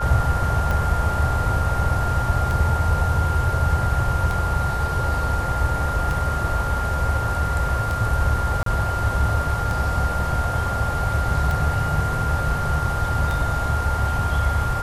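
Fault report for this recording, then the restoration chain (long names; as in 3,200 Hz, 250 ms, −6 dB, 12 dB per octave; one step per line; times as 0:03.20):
scratch tick 33 1/3 rpm
whistle 1,400 Hz −26 dBFS
0:08.63–0:08.66: drop-out 33 ms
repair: click removal
notch filter 1,400 Hz, Q 30
repair the gap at 0:08.63, 33 ms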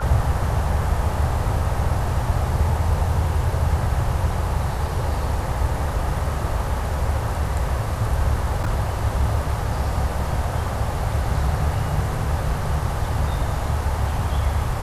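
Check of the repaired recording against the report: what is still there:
none of them is left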